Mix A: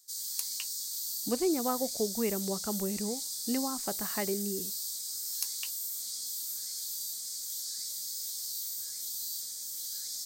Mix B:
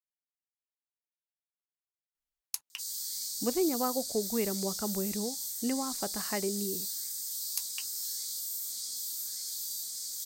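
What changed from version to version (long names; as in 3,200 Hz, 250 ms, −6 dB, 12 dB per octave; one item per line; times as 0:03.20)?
speech: entry +2.15 s
background: entry +2.70 s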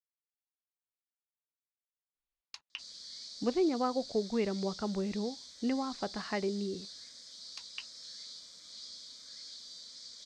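master: add low-pass filter 4,400 Hz 24 dB per octave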